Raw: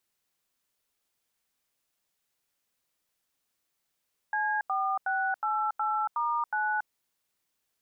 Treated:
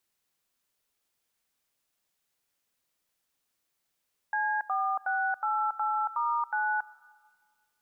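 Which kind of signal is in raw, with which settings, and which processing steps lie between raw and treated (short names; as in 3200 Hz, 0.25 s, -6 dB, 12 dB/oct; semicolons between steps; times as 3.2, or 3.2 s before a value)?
DTMF "C4688*9", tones 0.28 s, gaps 86 ms, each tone -28.5 dBFS
digital reverb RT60 1.8 s, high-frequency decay 0.95×, pre-delay 35 ms, DRR 19 dB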